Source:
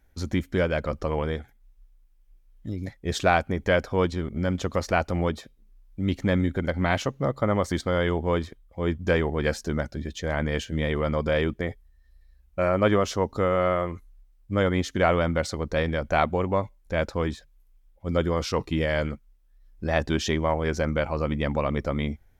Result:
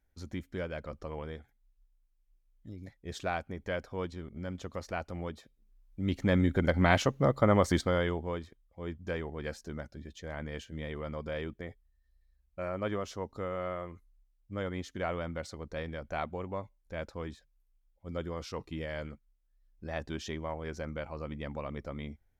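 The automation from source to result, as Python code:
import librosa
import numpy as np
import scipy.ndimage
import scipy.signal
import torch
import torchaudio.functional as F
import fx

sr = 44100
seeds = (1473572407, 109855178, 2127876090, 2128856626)

y = fx.gain(x, sr, db=fx.line((5.32, -13.0), (6.62, -0.5), (7.75, -0.5), (8.41, -13.0)))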